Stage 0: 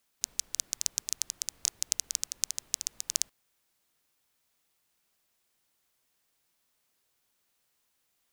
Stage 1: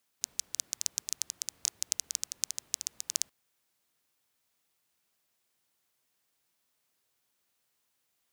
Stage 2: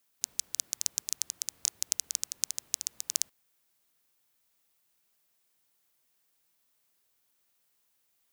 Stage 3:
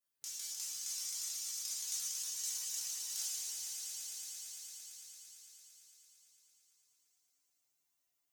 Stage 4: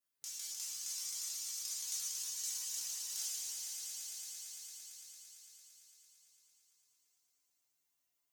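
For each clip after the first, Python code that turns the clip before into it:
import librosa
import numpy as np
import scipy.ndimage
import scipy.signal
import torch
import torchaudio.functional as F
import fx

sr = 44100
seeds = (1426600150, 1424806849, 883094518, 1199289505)

y1 = scipy.signal.sosfilt(scipy.signal.butter(2, 64.0, 'highpass', fs=sr, output='sos'), x)
y1 = y1 * librosa.db_to_amplitude(-2.0)
y2 = fx.high_shelf(y1, sr, hz=11000.0, db=7.0)
y3 = fx.spec_trails(y2, sr, decay_s=2.29)
y3 = fx.stiff_resonator(y3, sr, f0_hz=140.0, decay_s=0.25, stiffness=0.002)
y3 = fx.echo_swell(y3, sr, ms=113, loudest=5, wet_db=-9.0)
y3 = y3 * librosa.db_to_amplitude(-6.5)
y4 = fx.comb_fb(y3, sr, f0_hz=54.0, decay_s=1.5, harmonics='all', damping=0.0, mix_pct=50)
y4 = y4 * librosa.db_to_amplitude(4.5)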